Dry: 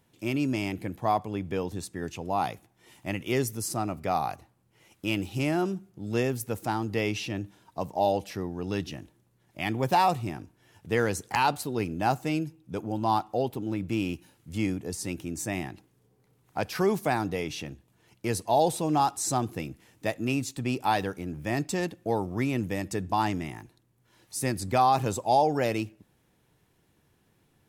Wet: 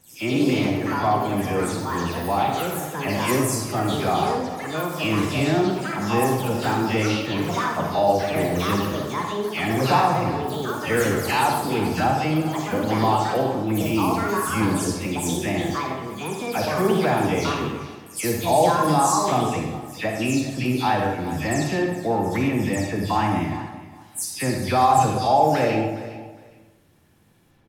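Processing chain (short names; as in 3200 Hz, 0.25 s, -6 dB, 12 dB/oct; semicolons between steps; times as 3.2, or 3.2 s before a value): spectral delay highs early, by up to 0.179 s; feedback echo 0.41 s, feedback 20%, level -17 dB; in parallel at -1 dB: limiter -22.5 dBFS, peak gain reduction 11.5 dB; on the sum: echoes that change speed 0.142 s, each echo +5 st, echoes 3, each echo -6 dB; reverb RT60 0.95 s, pre-delay 33 ms, DRR 1.5 dB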